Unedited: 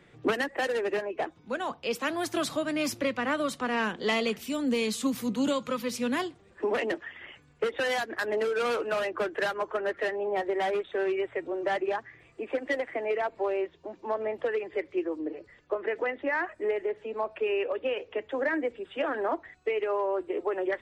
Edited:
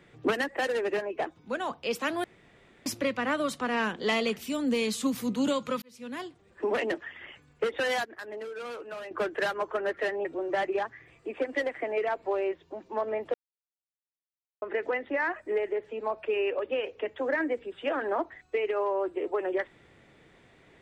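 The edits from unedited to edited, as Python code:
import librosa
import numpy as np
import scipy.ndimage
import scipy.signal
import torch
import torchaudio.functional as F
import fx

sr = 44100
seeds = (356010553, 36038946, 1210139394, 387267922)

y = fx.edit(x, sr, fx.room_tone_fill(start_s=2.24, length_s=0.62),
    fx.fade_in_span(start_s=5.82, length_s=0.89),
    fx.clip_gain(start_s=8.05, length_s=1.06, db=-10.5),
    fx.cut(start_s=10.25, length_s=1.13),
    fx.silence(start_s=14.47, length_s=1.28), tone=tone)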